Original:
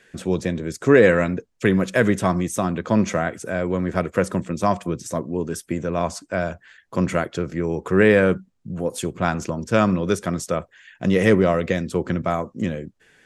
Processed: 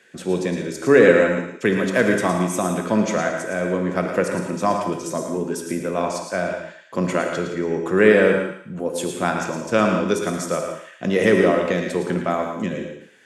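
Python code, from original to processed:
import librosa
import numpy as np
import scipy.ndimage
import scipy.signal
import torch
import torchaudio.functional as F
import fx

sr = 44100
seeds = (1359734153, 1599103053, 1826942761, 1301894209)

y = scipy.signal.sosfilt(scipy.signal.butter(2, 190.0, 'highpass', fs=sr, output='sos'), x)
y = fx.echo_thinned(y, sr, ms=112, feedback_pct=36, hz=810.0, wet_db=-7.0)
y = fx.rev_gated(y, sr, seeds[0], gate_ms=210, shape='flat', drr_db=4.0)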